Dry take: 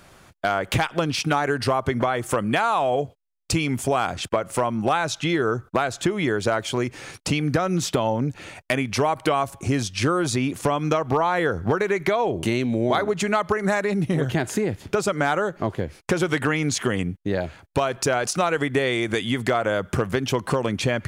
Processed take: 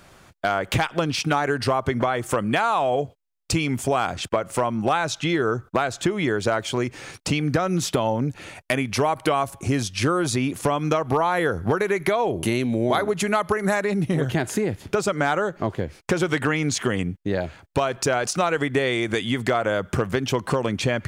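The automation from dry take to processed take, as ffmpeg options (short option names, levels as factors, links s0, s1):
-af "asetnsamples=n=441:p=0,asendcmd='7.67 equalizer g 5;11.06 equalizer g 14;13.76 equalizer g 3.5;14.94 equalizer g -4.5',equalizer=f=11000:t=o:w=0.24:g=-3.5"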